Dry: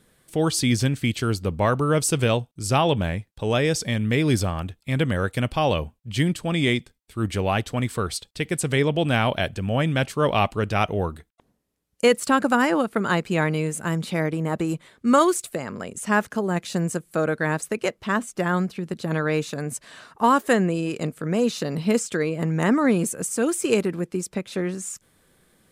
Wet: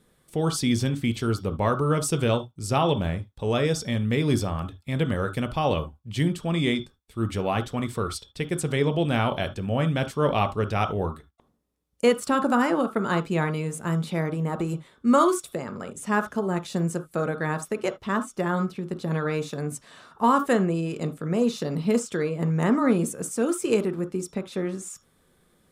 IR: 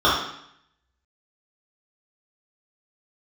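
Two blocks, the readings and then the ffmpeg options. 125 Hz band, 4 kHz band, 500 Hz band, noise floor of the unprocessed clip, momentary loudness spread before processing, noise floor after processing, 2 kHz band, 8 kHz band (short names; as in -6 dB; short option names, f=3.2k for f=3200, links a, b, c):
-2.0 dB, -4.5 dB, -2.0 dB, -68 dBFS, 9 LU, -64 dBFS, -5.5 dB, -5.5 dB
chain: -filter_complex "[0:a]lowshelf=f=490:g=4,asplit=2[a][b];[1:a]atrim=start_sample=2205,afade=t=out:st=0.13:d=0.01,atrim=end_sample=6174[c];[b][c]afir=irnorm=-1:irlink=0,volume=-27.5dB[d];[a][d]amix=inputs=2:normalize=0,volume=-5.5dB"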